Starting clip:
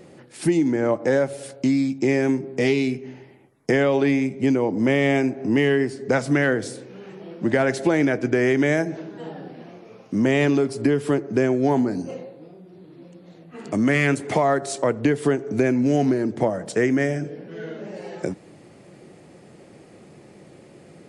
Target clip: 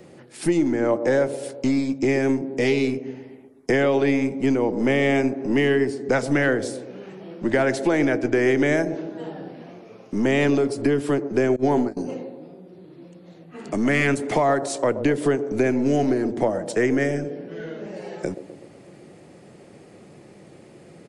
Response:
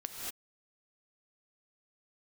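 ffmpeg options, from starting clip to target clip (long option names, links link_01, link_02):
-filter_complex "[0:a]aresample=32000,aresample=44100,acrossover=split=250|840|3000[link_01][link_02][link_03][link_04];[link_01]aeval=exprs='clip(val(0),-1,0.0126)':channel_layout=same[link_05];[link_02]aecho=1:1:126|252|378|504|630|756|882:0.376|0.214|0.122|0.0696|0.0397|0.0226|0.0129[link_06];[link_05][link_06][link_03][link_04]amix=inputs=4:normalize=0,asettb=1/sr,asplit=3[link_07][link_08][link_09];[link_07]atrim=end=11.564[link_10];[link_08]atrim=start=11.56:end=11.97,asetpts=PTS-STARTPTS,afade=type=in:duration=0.004:curve=qsin,afade=type=out:start_time=0.406:duration=0.004:curve=qsin,agate=range=-21dB:threshold=-20dB:ratio=16:detection=peak[link_11];[link_09]atrim=start=11.966[link_12];[link_10][link_11]acrossfade=duration=0.004:curve1=hsin:curve2=qsin[link_13];[link_13][link_12]acrossfade=duration=0.004:curve1=qsin:curve2=hsin"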